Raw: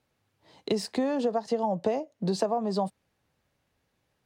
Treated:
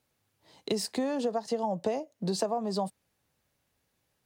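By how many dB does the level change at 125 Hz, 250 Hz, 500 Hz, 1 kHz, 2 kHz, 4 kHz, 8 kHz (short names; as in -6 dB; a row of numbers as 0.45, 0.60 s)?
-3.0, -3.0, -3.0, -3.0, -2.0, +1.0, +4.0 dB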